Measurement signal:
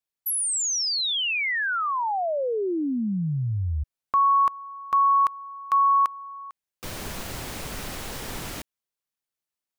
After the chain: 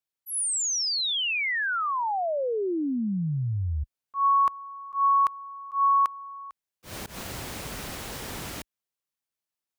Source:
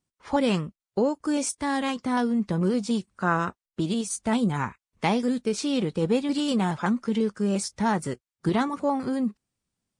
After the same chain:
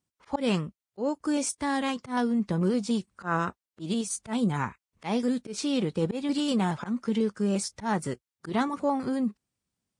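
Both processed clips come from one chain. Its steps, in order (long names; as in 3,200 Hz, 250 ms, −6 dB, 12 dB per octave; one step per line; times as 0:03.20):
volume swells 123 ms
high-pass filter 40 Hz
level −1.5 dB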